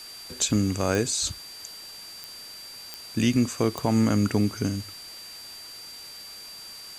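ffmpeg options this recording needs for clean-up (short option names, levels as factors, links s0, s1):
-af "adeclick=t=4,bandreject=f=4700:w=30,afwtdn=0.0056"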